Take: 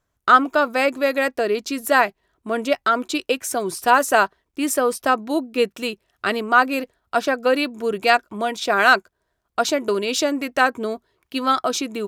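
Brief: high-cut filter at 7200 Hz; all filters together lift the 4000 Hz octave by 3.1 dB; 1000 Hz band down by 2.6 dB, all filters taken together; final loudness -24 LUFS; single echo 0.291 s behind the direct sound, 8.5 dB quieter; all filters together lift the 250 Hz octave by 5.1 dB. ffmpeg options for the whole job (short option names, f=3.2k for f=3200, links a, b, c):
-af "lowpass=7.2k,equalizer=f=250:t=o:g=6,equalizer=f=1k:t=o:g=-4.5,equalizer=f=4k:t=o:g=4.5,aecho=1:1:291:0.376,volume=-4dB"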